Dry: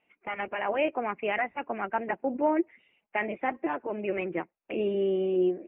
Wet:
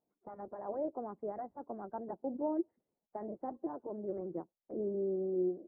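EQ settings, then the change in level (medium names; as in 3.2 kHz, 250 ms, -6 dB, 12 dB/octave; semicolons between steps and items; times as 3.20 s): Gaussian low-pass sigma 9.9 samples; -6.5 dB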